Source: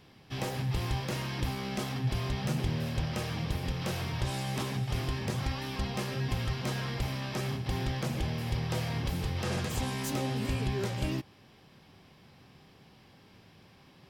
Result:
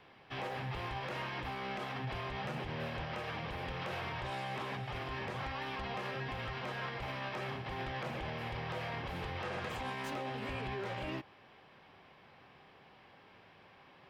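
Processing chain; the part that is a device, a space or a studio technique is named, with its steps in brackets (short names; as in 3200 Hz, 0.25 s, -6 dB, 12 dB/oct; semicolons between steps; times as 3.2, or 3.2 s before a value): DJ mixer with the lows and highs turned down (three-band isolator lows -13 dB, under 440 Hz, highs -20 dB, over 3100 Hz; limiter -34.5 dBFS, peak gain reduction 8.5 dB); gain +3.5 dB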